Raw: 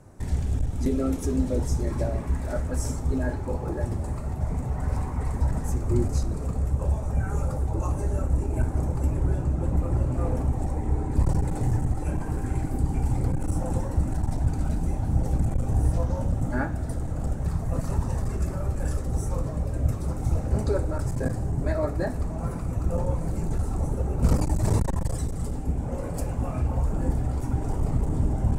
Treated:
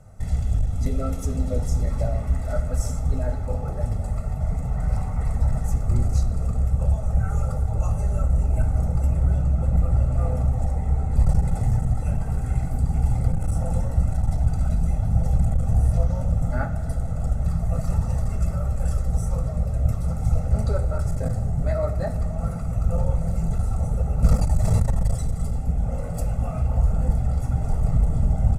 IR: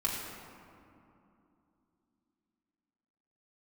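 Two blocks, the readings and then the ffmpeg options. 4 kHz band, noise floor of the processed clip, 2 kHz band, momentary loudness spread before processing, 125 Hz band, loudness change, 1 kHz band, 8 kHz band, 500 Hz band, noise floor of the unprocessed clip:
can't be measured, −28 dBFS, −2.0 dB, 4 LU, +3.5 dB, +3.0 dB, 0.0 dB, 0.0 dB, −1.0 dB, −31 dBFS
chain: -filter_complex "[0:a]aecho=1:1:1.5:0.78,asplit=2[link_01][link_02];[1:a]atrim=start_sample=2205,lowshelf=frequency=180:gain=8[link_03];[link_02][link_03]afir=irnorm=-1:irlink=0,volume=-16dB[link_04];[link_01][link_04]amix=inputs=2:normalize=0,volume=-3.5dB"

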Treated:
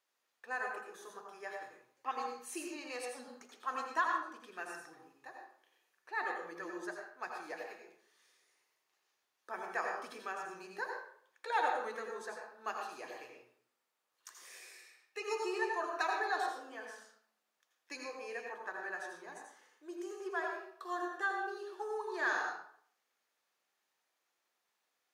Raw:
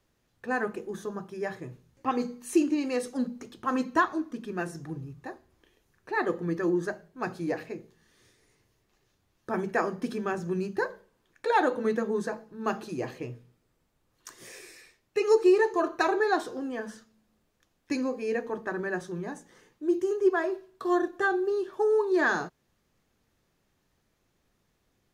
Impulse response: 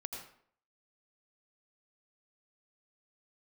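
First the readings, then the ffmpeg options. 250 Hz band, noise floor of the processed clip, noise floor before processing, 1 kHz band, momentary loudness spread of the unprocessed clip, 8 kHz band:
−20.0 dB, −84 dBFS, −74 dBFS, −6.0 dB, 16 LU, −5.5 dB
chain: -filter_complex "[0:a]highpass=800[link_01];[1:a]atrim=start_sample=2205[link_02];[link_01][link_02]afir=irnorm=-1:irlink=0,volume=-3.5dB"

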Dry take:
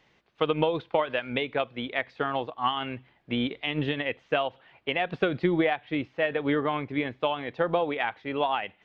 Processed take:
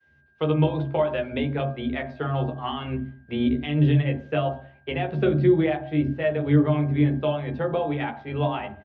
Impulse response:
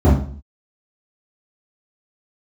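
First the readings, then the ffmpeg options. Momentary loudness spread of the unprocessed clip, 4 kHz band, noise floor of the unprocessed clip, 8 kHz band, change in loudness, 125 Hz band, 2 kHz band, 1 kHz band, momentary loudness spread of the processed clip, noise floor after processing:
5 LU, −4.0 dB, −65 dBFS, can't be measured, +4.0 dB, +14.0 dB, −3.5 dB, −2.0 dB, 10 LU, −59 dBFS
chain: -filter_complex "[0:a]aeval=exprs='val(0)+0.00355*sin(2*PI*1600*n/s)':channel_layout=same,agate=range=-33dB:threshold=-46dB:ratio=3:detection=peak,asplit=2[link_01][link_02];[link_02]adelay=13,volume=-5dB[link_03];[link_01][link_03]amix=inputs=2:normalize=0,asplit=2[link_04][link_05];[1:a]atrim=start_sample=2205[link_06];[link_05][link_06]afir=irnorm=-1:irlink=0,volume=-24.5dB[link_07];[link_04][link_07]amix=inputs=2:normalize=0,volume=-5dB"

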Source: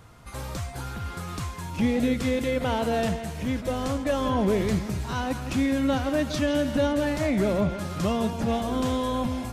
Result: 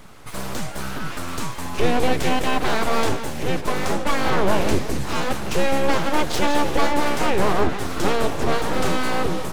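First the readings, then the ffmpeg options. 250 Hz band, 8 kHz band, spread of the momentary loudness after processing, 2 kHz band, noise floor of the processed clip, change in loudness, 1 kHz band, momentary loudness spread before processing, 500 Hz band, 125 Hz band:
−0.5 dB, +8.0 dB, 9 LU, +8.5 dB, −30 dBFS, +3.5 dB, +8.5 dB, 10 LU, +3.5 dB, +1.0 dB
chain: -af "aeval=exprs='abs(val(0))':channel_layout=same,volume=8dB"

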